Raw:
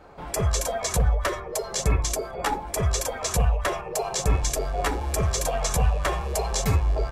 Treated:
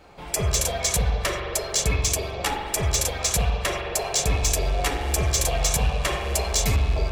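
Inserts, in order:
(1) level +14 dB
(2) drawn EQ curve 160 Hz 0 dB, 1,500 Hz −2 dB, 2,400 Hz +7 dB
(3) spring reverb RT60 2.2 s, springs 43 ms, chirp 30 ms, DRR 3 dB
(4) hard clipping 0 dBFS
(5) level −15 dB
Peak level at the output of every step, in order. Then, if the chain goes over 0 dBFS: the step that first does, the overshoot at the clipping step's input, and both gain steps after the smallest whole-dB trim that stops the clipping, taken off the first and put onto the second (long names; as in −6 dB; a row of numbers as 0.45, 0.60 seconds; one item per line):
+3.5, +8.0, +8.0, 0.0, −15.0 dBFS
step 1, 8.0 dB
step 1 +6 dB, step 5 −7 dB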